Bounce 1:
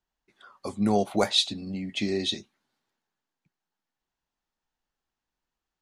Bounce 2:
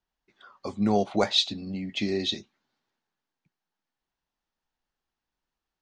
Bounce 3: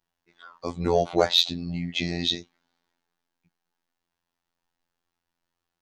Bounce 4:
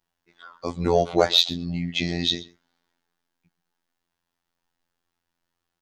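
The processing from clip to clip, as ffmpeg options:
ffmpeg -i in.wav -af "lowpass=frequency=6400:width=0.5412,lowpass=frequency=6400:width=1.3066" out.wav
ffmpeg -i in.wav -af "afftfilt=real='hypot(re,im)*cos(PI*b)':imag='0':win_size=2048:overlap=0.75,acontrast=71" out.wav
ffmpeg -i in.wav -filter_complex "[0:a]asplit=2[link_01][link_02];[link_02]adelay=128.3,volume=-20dB,highshelf=frequency=4000:gain=-2.89[link_03];[link_01][link_03]amix=inputs=2:normalize=0,volume=2dB" out.wav

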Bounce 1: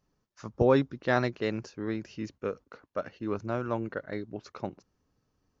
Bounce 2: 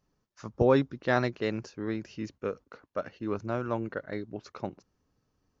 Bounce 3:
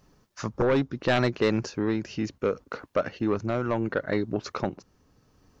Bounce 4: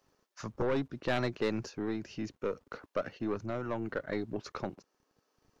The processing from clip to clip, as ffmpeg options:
ffmpeg -i in.wav -af anull out.wav
ffmpeg -i in.wav -af "acompressor=threshold=-43dB:ratio=1.5,aeval=exprs='0.119*sin(PI/2*2.24*val(0)/0.119)':channel_layout=same,tremolo=f=0.7:d=0.32,volume=4dB" out.wav
ffmpeg -i in.wav -filter_complex "[0:a]aeval=exprs='0.2*(cos(1*acos(clip(val(0)/0.2,-1,1)))-cos(1*PI/2))+0.0141*(cos(4*acos(clip(val(0)/0.2,-1,1)))-cos(4*PI/2))':channel_layout=same,acrossover=split=320[link_01][link_02];[link_01]aeval=exprs='val(0)*gte(abs(val(0)),0.00141)':channel_layout=same[link_03];[link_03][link_02]amix=inputs=2:normalize=0,volume=-8dB" out.wav

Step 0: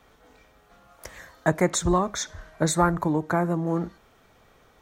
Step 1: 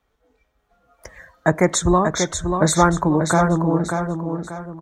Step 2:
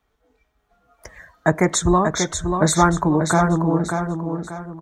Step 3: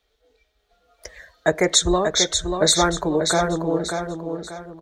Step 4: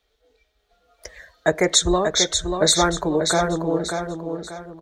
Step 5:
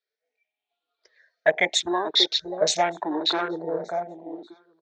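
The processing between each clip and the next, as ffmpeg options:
ffmpeg -i in.wav -filter_complex "[0:a]afftdn=noise_reduction=14:noise_floor=-44,dynaudnorm=framelen=330:gausssize=7:maxgain=11.5dB,asplit=2[link_01][link_02];[link_02]aecho=0:1:587|1174|1761|2348:0.501|0.18|0.065|0.0234[link_03];[link_01][link_03]amix=inputs=2:normalize=0" out.wav
ffmpeg -i in.wav -af "bandreject=frequency=530:width=12" out.wav
ffmpeg -i in.wav -af "equalizer=frequency=125:width_type=o:width=1:gain=-11,equalizer=frequency=250:width_type=o:width=1:gain=-7,equalizer=frequency=500:width_type=o:width=1:gain=7,equalizer=frequency=1000:width_type=o:width=1:gain=-9,equalizer=frequency=4000:width_type=o:width=1:gain=11" out.wav
ffmpeg -i in.wav -af anull out.wav
ffmpeg -i in.wav -af "afftfilt=real='re*pow(10,12/40*sin(2*PI*(0.58*log(max(b,1)*sr/1024/100)/log(2)-(0.83)*(pts-256)/sr)))':imag='im*pow(10,12/40*sin(2*PI*(0.58*log(max(b,1)*sr/1024/100)/log(2)-(0.83)*(pts-256)/sr)))':win_size=1024:overlap=0.75,afwtdn=0.0631,highpass=420,equalizer=frequency=510:width_type=q:width=4:gain=-6,equalizer=frequency=1200:width_type=q:width=4:gain=-8,equalizer=frequency=2400:width_type=q:width=4:gain=6,lowpass=frequency=5300:width=0.5412,lowpass=frequency=5300:width=1.3066,volume=-2dB" out.wav

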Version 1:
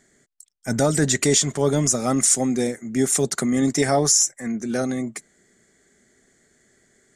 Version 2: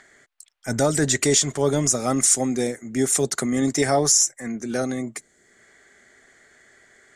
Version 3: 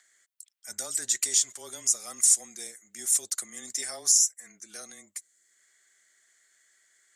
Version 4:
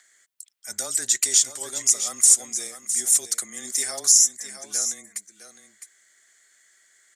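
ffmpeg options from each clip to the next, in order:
ffmpeg -i in.wav -filter_complex "[0:a]equalizer=frequency=190:width=2.3:gain=-6,acrossover=split=660|3400[link_01][link_02][link_03];[link_02]acompressor=mode=upward:threshold=-44dB:ratio=2.5[link_04];[link_01][link_04][link_03]amix=inputs=3:normalize=0" out.wav
ffmpeg -i in.wav -af "aderivative,afreqshift=-22,volume=-2.5dB" out.wav
ffmpeg -i in.wav -af "aecho=1:1:659:0.316,volume=5.5dB" out.wav

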